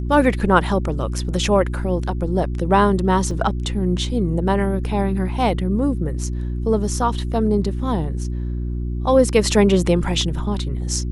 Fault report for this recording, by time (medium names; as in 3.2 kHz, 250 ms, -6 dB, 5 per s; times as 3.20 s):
hum 60 Hz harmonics 6 -24 dBFS
3.31 s: dropout 2 ms